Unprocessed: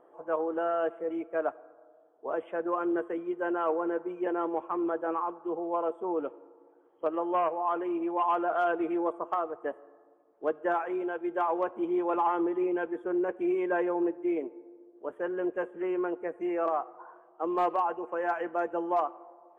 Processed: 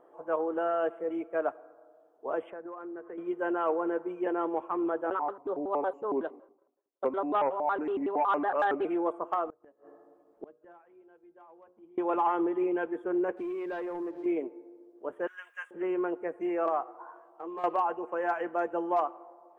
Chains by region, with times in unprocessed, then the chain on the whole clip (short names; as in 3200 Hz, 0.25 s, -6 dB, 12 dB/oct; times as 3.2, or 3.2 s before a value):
2.5–3.18 LPF 2200 Hz 24 dB/oct + compressor, threshold -39 dBFS
5.1–8.85 expander -49 dBFS + shaped vibrato square 5.4 Hz, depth 250 cents
9.47–11.98 low shelf 280 Hz +11.5 dB + notches 60/120/180/240/300/360/420/480/540/600 Hz + flipped gate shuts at -29 dBFS, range -28 dB
13.37–14.26 sample leveller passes 1 + compressor 5:1, threshold -34 dBFS
15.27–15.71 HPF 1300 Hz 24 dB/oct + high shelf 2900 Hz +11 dB
16.86–17.64 HPF 130 Hz + compressor 3:1, threshold -40 dBFS + doubler 15 ms -4.5 dB
whole clip: dry